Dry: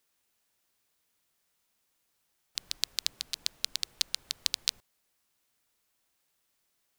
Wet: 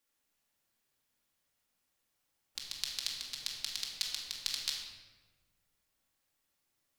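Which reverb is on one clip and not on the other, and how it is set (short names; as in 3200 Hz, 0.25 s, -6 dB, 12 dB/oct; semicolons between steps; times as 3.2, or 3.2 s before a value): shoebox room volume 990 m³, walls mixed, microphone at 2.3 m; gain -8 dB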